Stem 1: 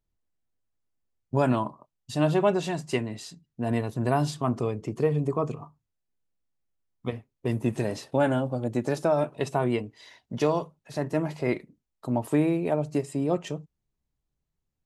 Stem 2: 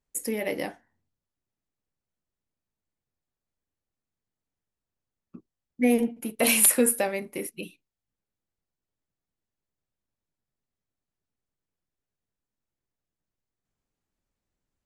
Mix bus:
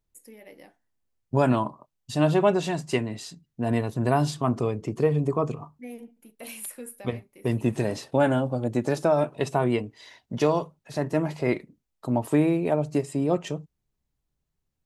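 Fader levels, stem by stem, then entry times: +2.0, -18.5 dB; 0.00, 0.00 s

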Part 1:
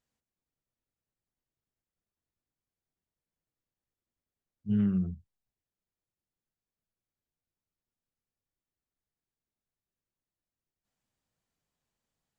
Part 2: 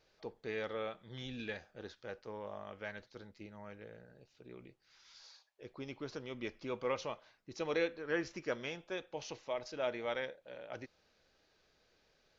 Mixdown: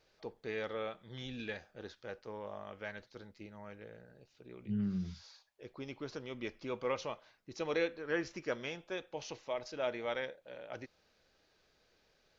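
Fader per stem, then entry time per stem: -8.0, +0.5 dB; 0.00, 0.00 s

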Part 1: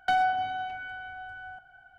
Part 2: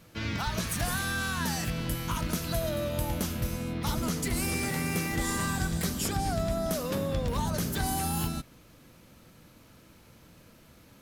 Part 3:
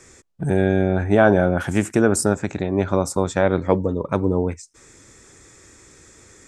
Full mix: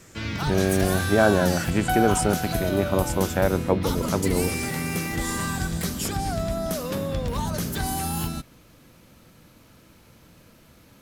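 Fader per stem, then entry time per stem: -0.5, +2.5, -4.0 dB; 1.80, 0.00, 0.00 s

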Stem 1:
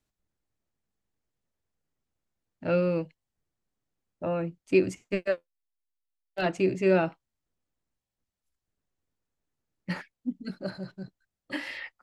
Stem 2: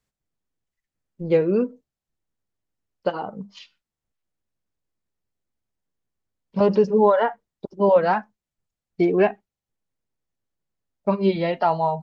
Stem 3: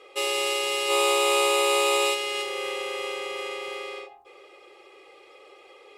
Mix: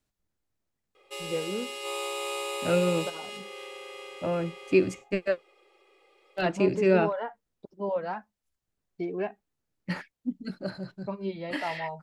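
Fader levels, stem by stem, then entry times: +0.5, -13.5, -11.5 dB; 0.00, 0.00, 0.95 s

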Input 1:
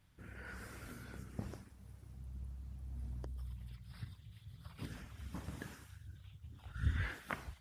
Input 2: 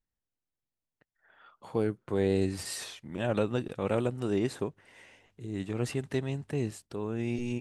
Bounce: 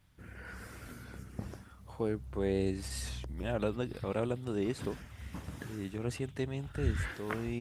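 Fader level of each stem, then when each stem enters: +2.5, -4.5 dB; 0.00, 0.25 s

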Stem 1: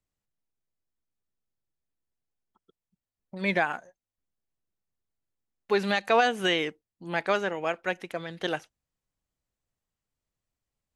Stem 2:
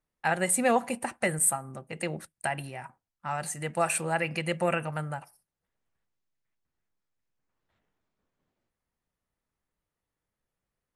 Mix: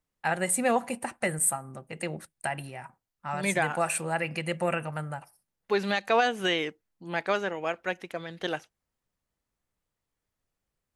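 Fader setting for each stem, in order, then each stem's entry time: -1.5, -1.0 dB; 0.00, 0.00 s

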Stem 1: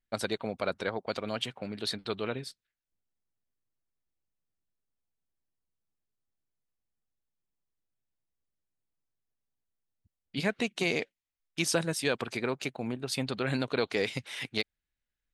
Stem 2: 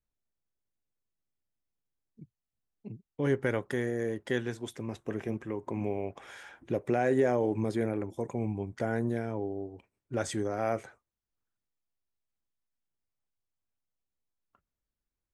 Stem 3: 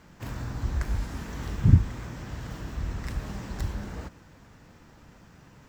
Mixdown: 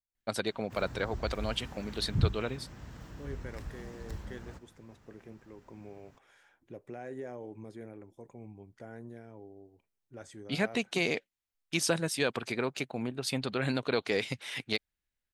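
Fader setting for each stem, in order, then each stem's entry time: -0.5, -15.5, -10.0 dB; 0.15, 0.00, 0.50 s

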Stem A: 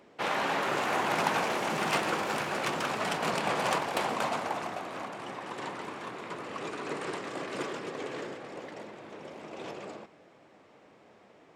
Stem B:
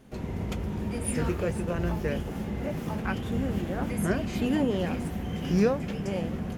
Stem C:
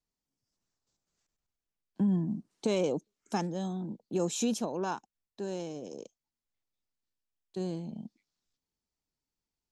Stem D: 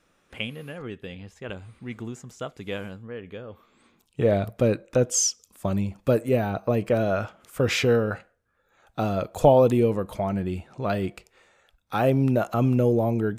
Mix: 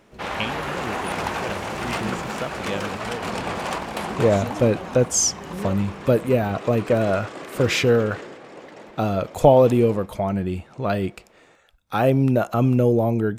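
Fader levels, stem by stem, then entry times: +1.0, -9.0, -6.5, +3.0 dB; 0.00, 0.00, 0.00, 0.00 s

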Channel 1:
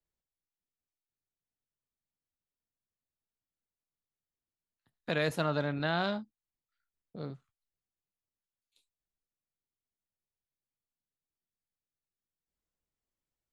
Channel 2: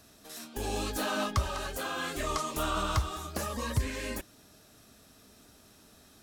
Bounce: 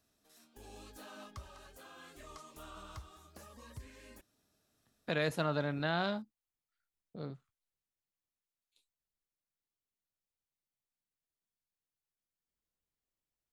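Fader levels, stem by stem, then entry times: -2.5, -19.5 dB; 0.00, 0.00 s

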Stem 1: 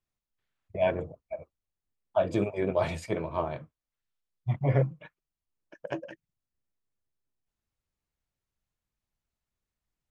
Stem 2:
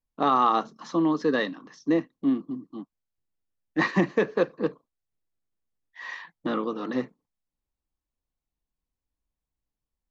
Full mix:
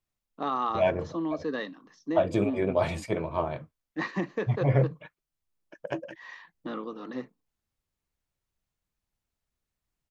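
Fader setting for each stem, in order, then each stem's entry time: +1.5, -8.0 dB; 0.00, 0.20 s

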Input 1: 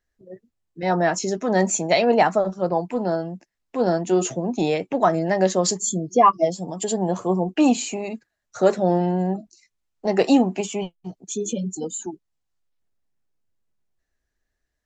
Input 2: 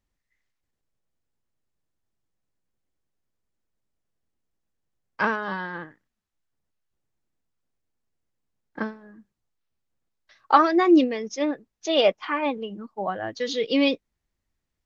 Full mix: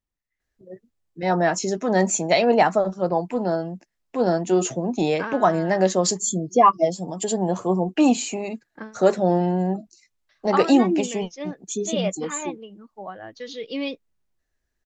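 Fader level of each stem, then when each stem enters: 0.0, -7.5 dB; 0.40, 0.00 s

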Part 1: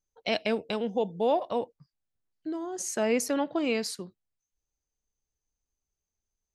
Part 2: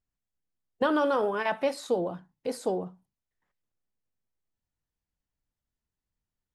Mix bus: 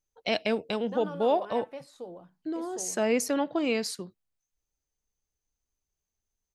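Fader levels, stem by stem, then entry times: +0.5, -14.5 dB; 0.00, 0.10 s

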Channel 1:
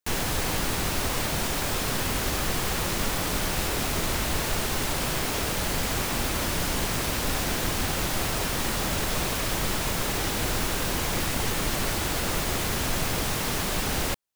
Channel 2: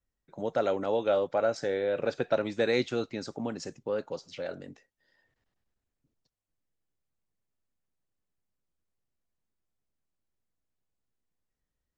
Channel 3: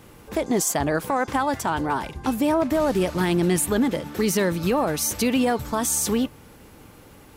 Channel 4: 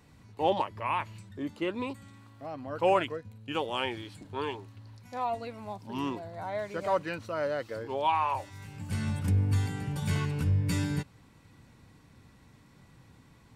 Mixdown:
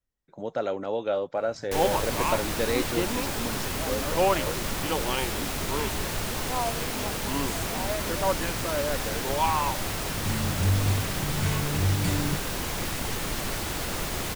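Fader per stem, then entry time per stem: -3.5, -1.0, -20.0, +1.5 dB; 1.65, 0.00, 1.60, 1.35 s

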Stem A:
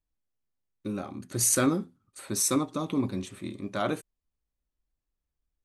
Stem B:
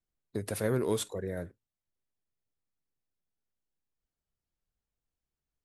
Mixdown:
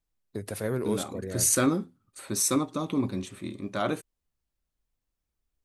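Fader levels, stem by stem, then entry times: +0.5, -0.5 dB; 0.00, 0.00 s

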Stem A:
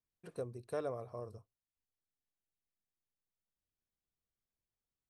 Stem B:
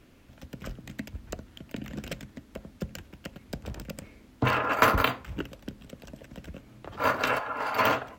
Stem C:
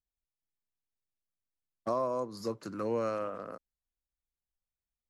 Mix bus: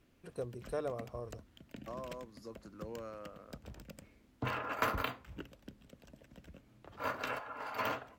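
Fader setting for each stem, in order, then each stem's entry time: +1.0, -12.0, -13.5 dB; 0.00, 0.00, 0.00 s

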